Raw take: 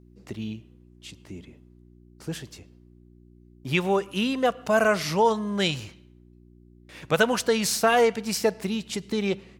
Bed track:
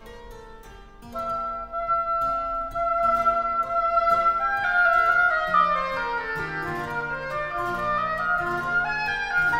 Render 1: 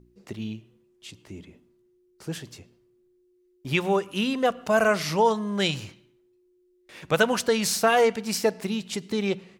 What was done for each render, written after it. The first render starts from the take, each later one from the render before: de-hum 60 Hz, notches 5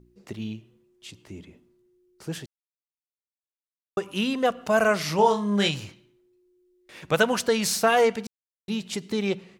2.46–3.97 mute; 5.16–5.69 flutter echo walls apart 4.2 m, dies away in 0.26 s; 8.27–8.68 mute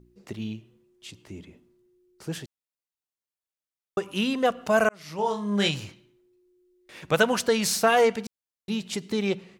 4.89–5.7 fade in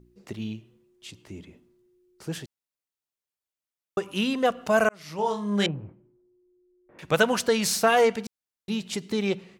5.66–6.99 Bessel low-pass 800 Hz, order 4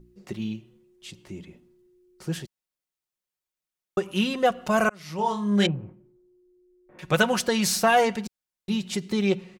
low shelf 110 Hz +5.5 dB; comb 5.5 ms, depth 46%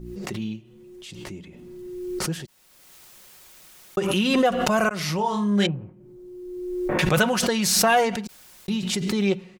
backwards sustainer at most 28 dB/s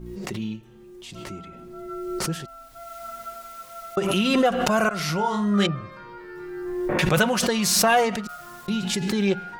add bed track -16 dB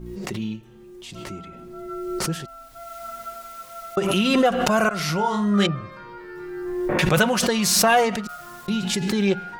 gain +1.5 dB

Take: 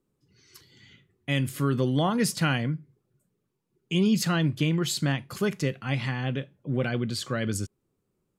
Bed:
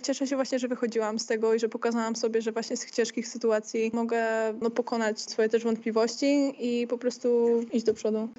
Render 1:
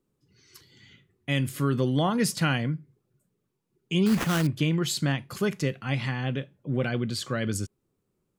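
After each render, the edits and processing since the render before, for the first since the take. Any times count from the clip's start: 4.06–4.47 sample-rate reducer 4600 Hz, jitter 20%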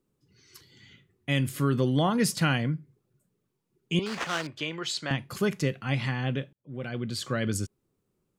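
3.99–5.11 three-band isolator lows -18 dB, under 420 Hz, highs -21 dB, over 7400 Hz; 6.53–7.31 fade in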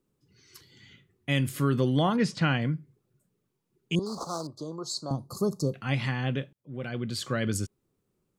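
2.16–2.62 air absorption 120 m; 3.95–5.74 Chebyshev band-stop 1200–4200 Hz, order 4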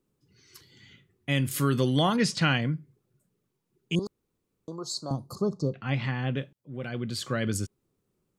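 1.51–2.61 high shelf 2600 Hz +9.5 dB; 4.07–4.68 room tone; 5.35–6.37 air absorption 130 m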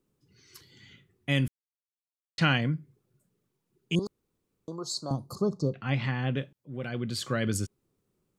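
1.48–2.38 mute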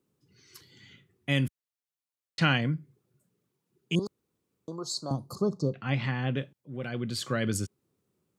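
HPF 79 Hz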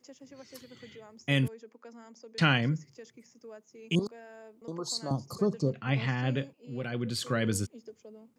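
add bed -22.5 dB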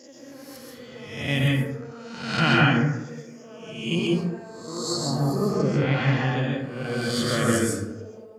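spectral swells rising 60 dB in 0.82 s; plate-style reverb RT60 0.88 s, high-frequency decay 0.4×, pre-delay 0.115 s, DRR -3.5 dB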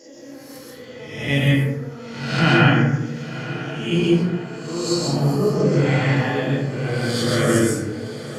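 diffused feedback echo 0.999 s, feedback 50%, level -14 dB; shoebox room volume 38 m³, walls mixed, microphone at 0.62 m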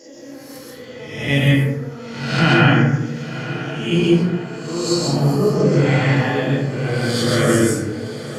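gain +2.5 dB; limiter -3 dBFS, peak gain reduction 2.5 dB

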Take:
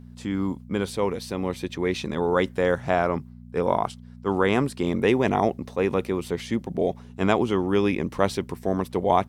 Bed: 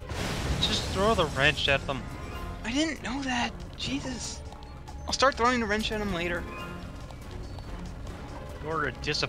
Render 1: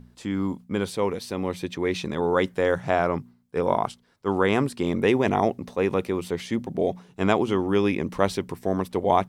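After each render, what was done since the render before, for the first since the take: de-hum 60 Hz, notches 4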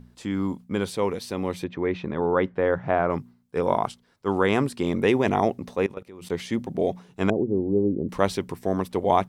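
1.64–3.1 LPF 2000 Hz; 5.86–6.3 level quantiser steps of 21 dB; 7.3–8.09 inverse Chebyshev low-pass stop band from 1400 Hz, stop band 50 dB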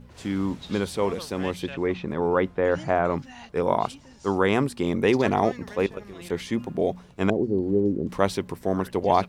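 add bed -15.5 dB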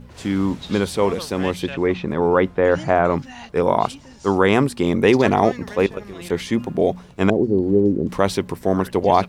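gain +6 dB; limiter -3 dBFS, peak gain reduction 3 dB

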